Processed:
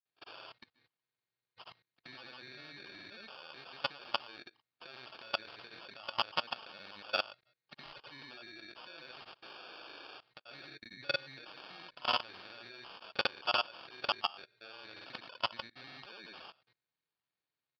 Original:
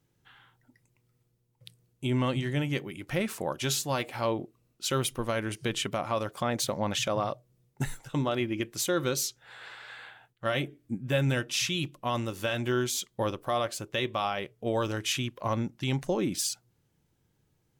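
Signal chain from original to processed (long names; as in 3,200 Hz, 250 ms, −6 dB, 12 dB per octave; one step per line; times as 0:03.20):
hearing-aid frequency compression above 1,800 Hz 1.5 to 1
in parallel at +0.5 dB: brickwall limiter −25 dBFS, peak gain reduction 9.5 dB
on the sum: downward compressor 6 to 1, threshold −41 dBFS, peak gain reduction 20 dB
decimation without filtering 22×
spectral tilt +4.5 dB per octave
noise gate −58 dBFS, range −21 dB
granular cloud 100 ms, grains 20 per second, pitch spread up and down by 0 semitones
elliptic low-pass filter 4,600 Hz, stop band 40 dB
low-shelf EQ 440 Hz −5.5 dB
output level in coarse steps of 22 dB
level +15 dB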